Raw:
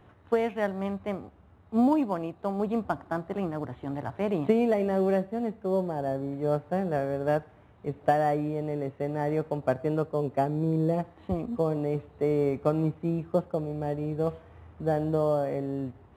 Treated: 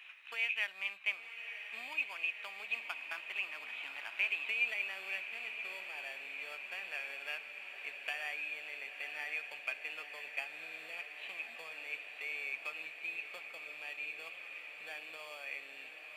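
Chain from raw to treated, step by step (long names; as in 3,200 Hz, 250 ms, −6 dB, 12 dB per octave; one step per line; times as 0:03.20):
downward compressor 2.5 to 1, threshold −36 dBFS, peak gain reduction 12 dB
high-pass with resonance 2,500 Hz, resonance Q 12
on a send: feedback delay with all-pass diffusion 1,024 ms, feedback 76%, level −9 dB
on the sum: level +6 dB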